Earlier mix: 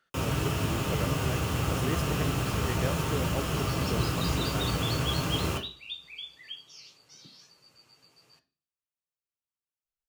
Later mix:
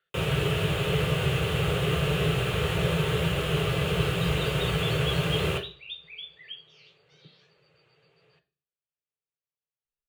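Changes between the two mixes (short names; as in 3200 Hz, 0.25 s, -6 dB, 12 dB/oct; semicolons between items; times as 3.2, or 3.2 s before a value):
speech -10.0 dB; second sound: add tape spacing loss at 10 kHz 20 dB; master: add EQ curve 110 Hz 0 dB, 160 Hz +7 dB, 250 Hz -14 dB, 420 Hz +9 dB, 980 Hz -3 dB, 1700 Hz +5 dB, 3600 Hz +7 dB, 5400 Hz -9 dB, 9100 Hz -1 dB, 15000 Hz -5 dB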